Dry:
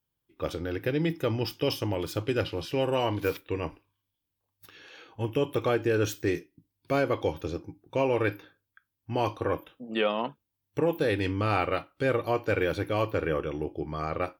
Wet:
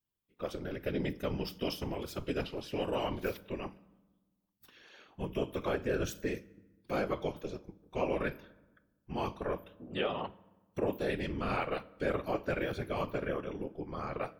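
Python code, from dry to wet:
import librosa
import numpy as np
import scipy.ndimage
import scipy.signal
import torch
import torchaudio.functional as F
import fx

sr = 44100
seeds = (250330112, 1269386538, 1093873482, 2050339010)

y = fx.whisperise(x, sr, seeds[0])
y = fx.rev_fdn(y, sr, rt60_s=1.2, lf_ratio=1.4, hf_ratio=0.65, size_ms=31.0, drr_db=18.5)
y = y * 10.0 ** (-7.0 / 20.0)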